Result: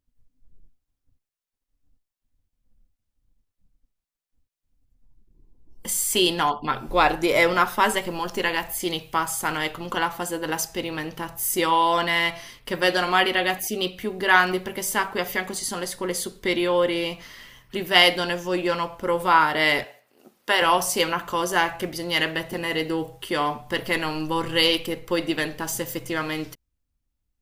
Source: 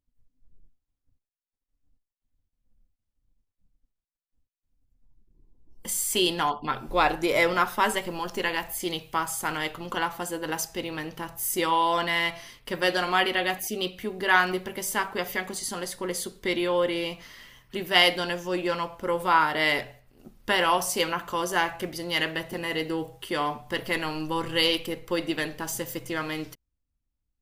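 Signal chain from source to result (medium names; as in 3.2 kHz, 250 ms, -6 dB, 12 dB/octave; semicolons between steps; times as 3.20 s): 19.84–20.62 s: high-pass 380 Hz 12 dB/octave; trim +3.5 dB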